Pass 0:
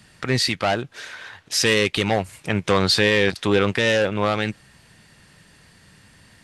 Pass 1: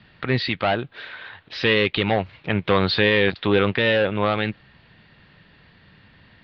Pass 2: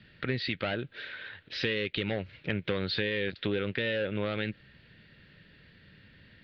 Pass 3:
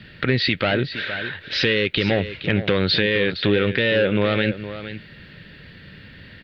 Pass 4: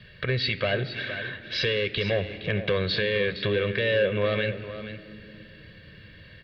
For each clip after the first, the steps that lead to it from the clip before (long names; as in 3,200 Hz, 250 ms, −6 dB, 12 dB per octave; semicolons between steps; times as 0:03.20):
Butterworth low-pass 4,100 Hz 48 dB per octave
flat-topped bell 910 Hz −10.5 dB 1 octave; downward compressor 6 to 1, threshold −23 dBFS, peak gain reduction 9.5 dB; level −4 dB
in parallel at +1.5 dB: brickwall limiter −23 dBFS, peak gain reduction 10 dB; on the sum: single-tap delay 465 ms −12 dB; level +6.5 dB
convolution reverb RT60 3.0 s, pre-delay 4 ms, DRR 14 dB; level −8 dB